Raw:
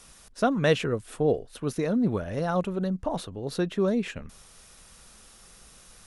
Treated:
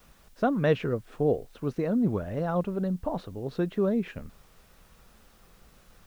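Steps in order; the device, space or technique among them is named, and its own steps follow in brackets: cassette deck with a dirty head (tape spacing loss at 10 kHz 27 dB; wow and flutter; white noise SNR 36 dB)

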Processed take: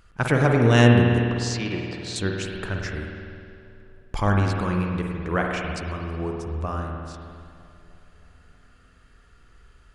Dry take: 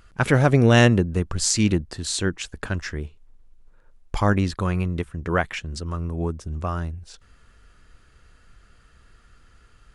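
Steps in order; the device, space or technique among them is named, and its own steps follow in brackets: 1.18–2.16 s: three-band isolator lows -13 dB, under 350 Hz, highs -23 dB, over 5.5 kHz; dub delay into a spring reverb (filtered feedback delay 316 ms, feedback 68%, low-pass 1.9 kHz, level -20 dB; spring tank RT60 2.2 s, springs 50 ms, chirp 75 ms, DRR 0.5 dB); trim -3 dB

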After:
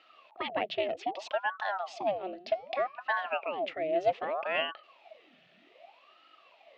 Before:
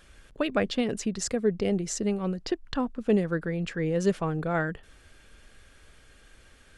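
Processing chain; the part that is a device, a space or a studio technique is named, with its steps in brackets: 1.85–3.73 s: de-hum 179.4 Hz, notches 32; voice changer toy (ring modulator with a swept carrier 730 Hz, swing 80%, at 0.64 Hz; cabinet simulation 440–3900 Hz, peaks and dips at 450 Hz -5 dB, 650 Hz +9 dB, 960 Hz -9 dB, 1.5 kHz -9 dB, 2.7 kHz +5 dB)

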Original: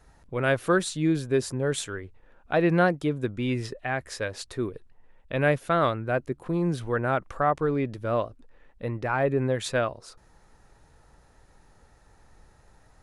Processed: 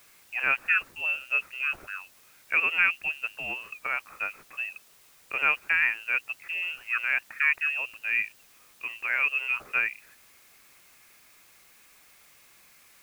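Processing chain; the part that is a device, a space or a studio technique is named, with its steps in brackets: scrambled radio voice (band-pass 390–2600 Hz; frequency inversion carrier 3 kHz; white noise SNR 27 dB)

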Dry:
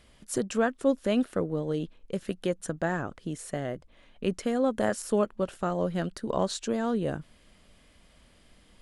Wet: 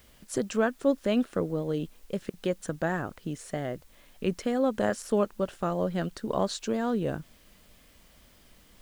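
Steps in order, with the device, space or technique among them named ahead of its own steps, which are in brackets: worn cassette (low-pass 8.2 kHz; wow and flutter; level dips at 2.30 s, 35 ms -28 dB; white noise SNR 33 dB)

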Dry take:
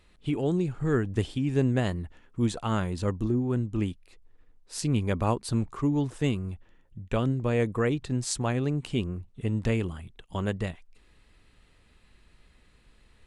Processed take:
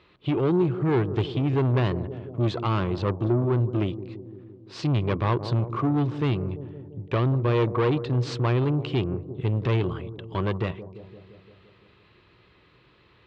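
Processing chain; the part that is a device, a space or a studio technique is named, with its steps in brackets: high-pass 68 Hz 6 dB/octave; analogue delay pedal into a guitar amplifier (bucket-brigade echo 171 ms, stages 1024, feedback 67%, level -15.5 dB; valve stage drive 27 dB, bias 0.45; cabinet simulation 91–4100 Hz, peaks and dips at 120 Hz +5 dB, 230 Hz -9 dB, 360 Hz +6 dB, 740 Hz -3 dB, 1.1 kHz +5 dB, 1.8 kHz -3 dB); trim +8 dB

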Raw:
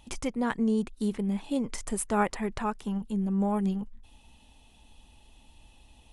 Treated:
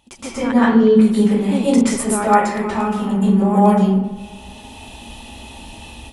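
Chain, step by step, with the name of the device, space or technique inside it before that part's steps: 0.47–0.90 s: low-pass 8.2 kHz -> 3.3 kHz 24 dB/octave; spring tank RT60 2.6 s, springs 46 ms, chirp 45 ms, DRR 19.5 dB; far laptop microphone (reverberation RT60 0.75 s, pre-delay 118 ms, DRR -9.5 dB; high-pass 130 Hz 6 dB/octave; level rider gain up to 16 dB); trim -1 dB

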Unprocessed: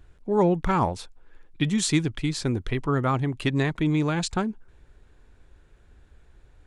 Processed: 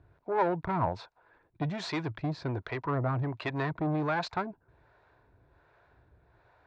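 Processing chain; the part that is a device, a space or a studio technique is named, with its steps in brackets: guitar amplifier with harmonic tremolo (harmonic tremolo 1.3 Hz, depth 70%, crossover 440 Hz; saturation -25.5 dBFS, distortion -10 dB; cabinet simulation 96–4200 Hz, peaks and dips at 110 Hz +5 dB, 220 Hz -9 dB, 660 Hz +9 dB, 970 Hz +9 dB, 1.5 kHz +4 dB, 3.1 kHz -9 dB)

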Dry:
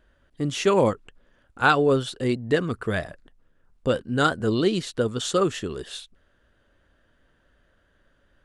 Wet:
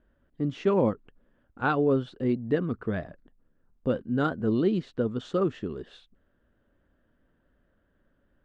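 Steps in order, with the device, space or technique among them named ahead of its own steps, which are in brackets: phone in a pocket (low-pass 4 kHz 12 dB/octave; peaking EQ 230 Hz +6 dB 1.2 oct; treble shelf 2 kHz -10.5 dB); trim -5.5 dB

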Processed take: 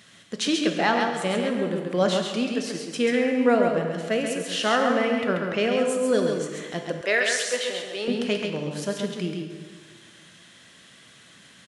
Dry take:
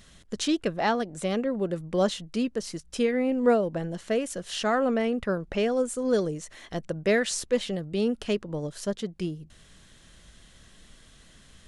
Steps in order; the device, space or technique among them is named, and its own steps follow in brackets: PA in a hall (high-pass 120 Hz 24 dB/octave; peaking EQ 2.2 kHz +6 dB 1.9 oct; delay 135 ms -4.5 dB; reverberation RT60 1.8 s, pre-delay 16 ms, DRR 5 dB); 7.01–8.08 s: high-pass 530 Hz 12 dB/octave

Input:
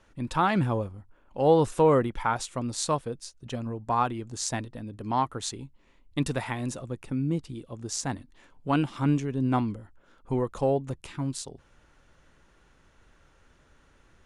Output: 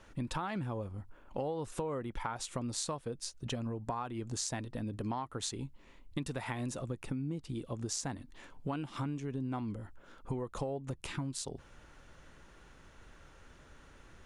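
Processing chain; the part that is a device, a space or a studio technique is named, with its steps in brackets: serial compression, leveller first (compression 2:1, threshold -29 dBFS, peak gain reduction 8 dB; compression 6:1, threshold -38 dBFS, peak gain reduction 14.5 dB); trim +3.5 dB

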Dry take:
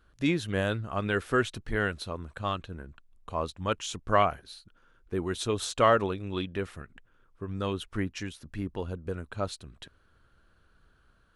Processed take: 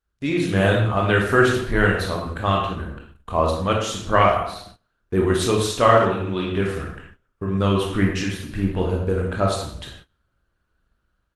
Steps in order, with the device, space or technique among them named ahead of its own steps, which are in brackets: speakerphone in a meeting room (reverberation RT60 0.70 s, pre-delay 17 ms, DRR -1.5 dB; speakerphone echo 80 ms, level -11 dB; level rider gain up to 9 dB; gate -42 dBFS, range -19 dB; Opus 20 kbps 48 kHz)

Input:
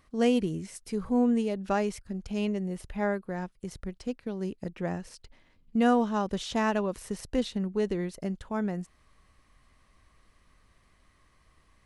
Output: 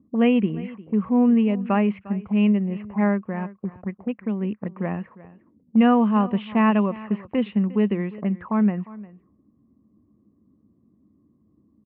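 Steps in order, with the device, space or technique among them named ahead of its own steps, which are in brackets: envelope filter bass rig (touch-sensitive low-pass 270–2800 Hz up, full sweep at -30 dBFS; cabinet simulation 85–2300 Hz, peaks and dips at 210 Hz +10 dB, 1.1 kHz +7 dB, 1.5 kHz -5 dB); delay 353 ms -19 dB; trim +2.5 dB

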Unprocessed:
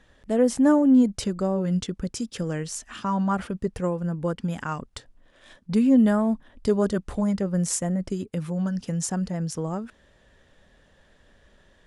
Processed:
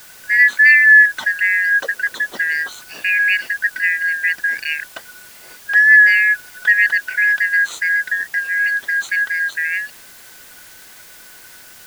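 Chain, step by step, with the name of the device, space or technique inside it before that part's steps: split-band scrambled radio (four frequency bands reordered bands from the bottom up 3142; band-pass 320–3300 Hz; white noise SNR 25 dB); 1.84–2.69 s: peaking EQ 430 Hz +7 dB 1.7 oct; trim +8.5 dB

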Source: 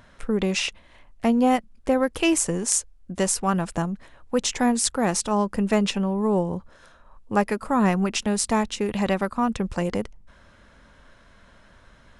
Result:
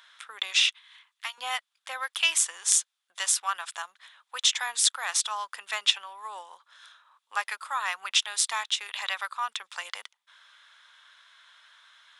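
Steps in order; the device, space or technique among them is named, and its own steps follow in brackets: headphones lying on a table (high-pass 1.1 kHz 24 dB/octave; peaking EQ 3.5 kHz +12 dB 0.34 oct); 0.65–1.38 s: high-pass 920 Hz 24 dB/octave

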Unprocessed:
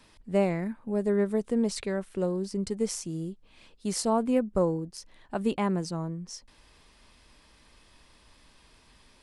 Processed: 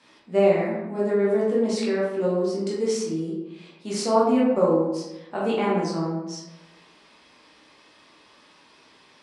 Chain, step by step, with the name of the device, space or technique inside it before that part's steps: supermarket ceiling speaker (band-pass 270–6700 Hz; reverberation RT60 1.0 s, pre-delay 11 ms, DRR -6.5 dB)

